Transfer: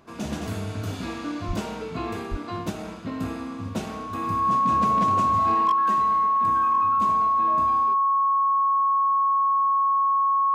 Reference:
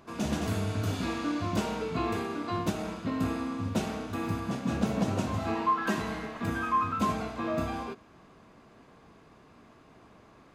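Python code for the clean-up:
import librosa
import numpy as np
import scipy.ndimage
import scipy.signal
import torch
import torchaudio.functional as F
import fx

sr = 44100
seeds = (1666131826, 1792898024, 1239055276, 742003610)

y = fx.fix_declip(x, sr, threshold_db=-15.0)
y = fx.notch(y, sr, hz=1100.0, q=30.0)
y = fx.fix_deplosive(y, sr, at_s=(1.47, 2.3))
y = fx.gain(y, sr, db=fx.steps((0.0, 0.0), (5.72, 5.5)))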